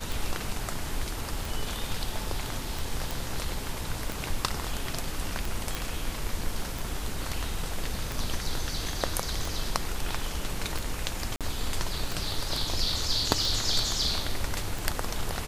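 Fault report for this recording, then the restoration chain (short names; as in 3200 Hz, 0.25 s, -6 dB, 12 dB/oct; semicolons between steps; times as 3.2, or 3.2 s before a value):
tick 45 rpm
3.11 pop
5.75 pop
11.36–11.41 gap 47 ms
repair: de-click; interpolate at 11.36, 47 ms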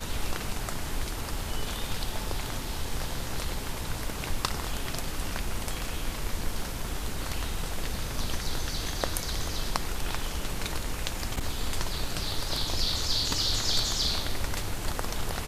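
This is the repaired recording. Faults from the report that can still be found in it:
none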